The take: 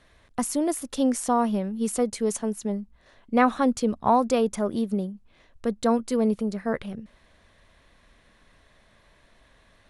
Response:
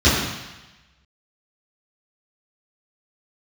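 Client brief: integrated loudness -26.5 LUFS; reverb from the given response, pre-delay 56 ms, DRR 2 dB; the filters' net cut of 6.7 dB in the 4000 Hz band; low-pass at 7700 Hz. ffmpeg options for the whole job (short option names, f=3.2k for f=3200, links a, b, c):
-filter_complex "[0:a]lowpass=7.7k,equalizer=f=4k:t=o:g=-8.5,asplit=2[a][b];[1:a]atrim=start_sample=2205,adelay=56[c];[b][c]afir=irnorm=-1:irlink=0,volume=-25dB[d];[a][d]amix=inputs=2:normalize=0,volume=-5.5dB"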